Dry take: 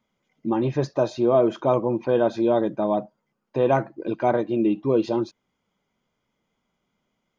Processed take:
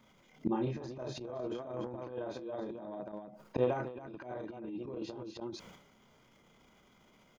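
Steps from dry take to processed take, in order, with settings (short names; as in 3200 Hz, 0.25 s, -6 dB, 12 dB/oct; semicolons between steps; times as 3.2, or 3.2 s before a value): loudspeakers at several distances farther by 11 m -2 dB, 97 m -6 dB; flipped gate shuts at -19 dBFS, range -32 dB; transient shaper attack -10 dB, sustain +12 dB; gain +8.5 dB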